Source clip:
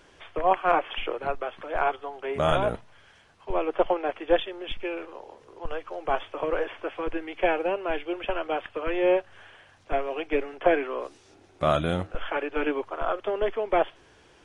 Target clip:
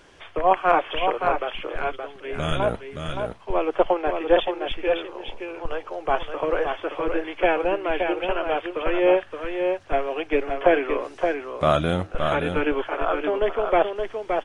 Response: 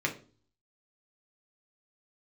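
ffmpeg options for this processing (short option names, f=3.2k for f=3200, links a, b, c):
-filter_complex "[0:a]asettb=1/sr,asplit=3[a][b][c];[a]atrim=end=1.614[d];[b]atrim=start=1.61:end=2.6,asetpts=PTS-STARTPTS,afade=t=in:d=0.004:c=qsin,afade=t=out:st=0.986:d=0.004:c=qsin,equalizer=f=800:w=0.95:g=-14.5[e];[c]atrim=start=2.596[f];[d][e]acrossfade=d=0.004:c1=hsin:c2=qsin[g];[g][f]acrossfade=d=0.004:c1=qsin:c2=hsin,aecho=1:1:571:0.531,volume=3.5dB"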